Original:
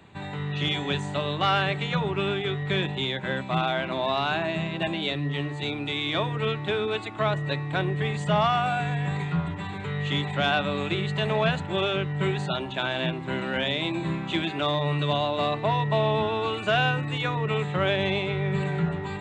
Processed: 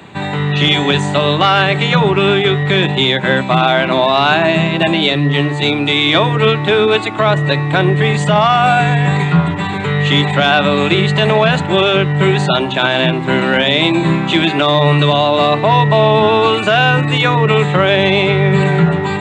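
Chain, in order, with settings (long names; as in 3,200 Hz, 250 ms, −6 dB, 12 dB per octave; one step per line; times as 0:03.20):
high-pass filter 120 Hz
boost into a limiter +17 dB
level −1 dB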